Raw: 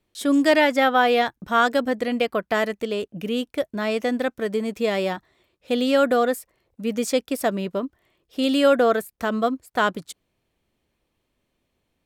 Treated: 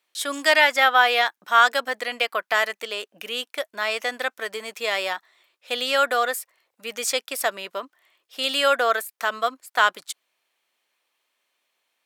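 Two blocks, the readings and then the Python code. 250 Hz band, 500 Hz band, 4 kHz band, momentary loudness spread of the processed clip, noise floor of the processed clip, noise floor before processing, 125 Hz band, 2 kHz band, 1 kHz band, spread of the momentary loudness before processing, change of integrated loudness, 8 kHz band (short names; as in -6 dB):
-17.5 dB, -5.5 dB, +5.5 dB, 16 LU, -80 dBFS, -76 dBFS, n/a, +5.0 dB, +1.5 dB, 11 LU, 0.0 dB, +5.5 dB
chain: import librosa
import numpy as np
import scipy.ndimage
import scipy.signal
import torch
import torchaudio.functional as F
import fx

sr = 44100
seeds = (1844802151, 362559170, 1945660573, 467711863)

y = scipy.signal.sosfilt(scipy.signal.butter(2, 1000.0, 'highpass', fs=sr, output='sos'), x)
y = F.gain(torch.from_numpy(y), 5.5).numpy()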